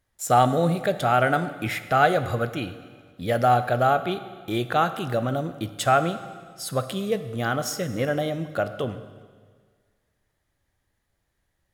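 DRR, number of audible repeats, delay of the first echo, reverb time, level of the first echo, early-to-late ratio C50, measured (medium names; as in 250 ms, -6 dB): 10.5 dB, no echo, no echo, 1.7 s, no echo, 12.0 dB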